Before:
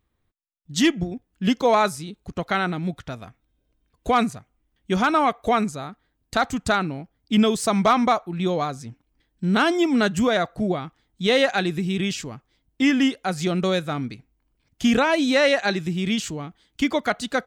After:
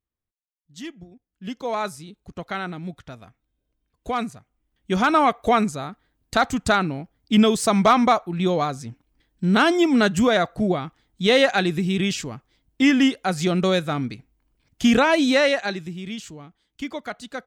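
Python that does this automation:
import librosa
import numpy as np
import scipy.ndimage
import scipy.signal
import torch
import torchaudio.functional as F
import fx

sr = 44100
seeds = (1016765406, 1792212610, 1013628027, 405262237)

y = fx.gain(x, sr, db=fx.line((1.14, -17.0), (1.88, -6.0), (4.34, -6.0), (5.15, 2.0), (15.28, 2.0), (16.03, -9.0)))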